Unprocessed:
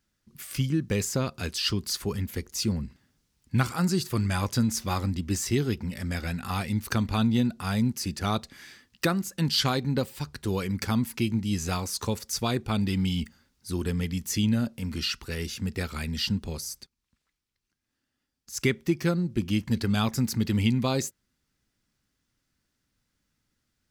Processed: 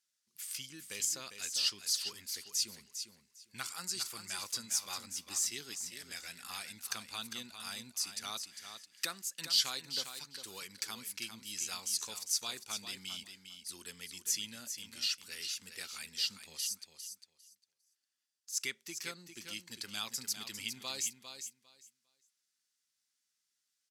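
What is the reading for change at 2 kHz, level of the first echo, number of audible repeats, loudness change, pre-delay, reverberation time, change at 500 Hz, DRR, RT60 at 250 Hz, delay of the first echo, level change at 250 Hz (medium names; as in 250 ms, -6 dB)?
-9.0 dB, -8.5 dB, 2, -9.0 dB, no reverb, no reverb, -22.0 dB, no reverb, no reverb, 402 ms, -28.0 dB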